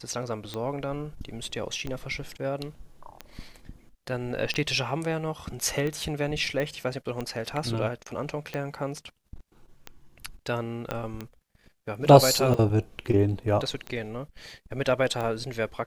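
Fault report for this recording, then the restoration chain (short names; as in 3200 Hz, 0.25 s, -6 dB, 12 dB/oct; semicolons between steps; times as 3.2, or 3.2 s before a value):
tick 45 rpm -19 dBFS
6.6 pop -18 dBFS
10.91 pop -14 dBFS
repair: de-click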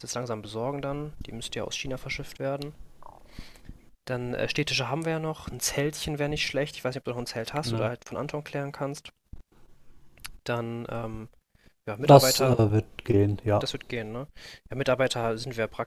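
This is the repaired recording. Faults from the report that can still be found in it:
10.91 pop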